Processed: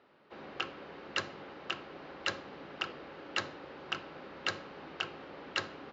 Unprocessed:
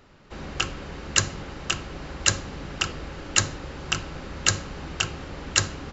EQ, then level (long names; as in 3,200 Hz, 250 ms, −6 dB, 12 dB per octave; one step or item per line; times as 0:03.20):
high-pass filter 390 Hz 12 dB per octave
low-pass filter 4,500 Hz 24 dB per octave
spectral tilt −2 dB per octave
−7.0 dB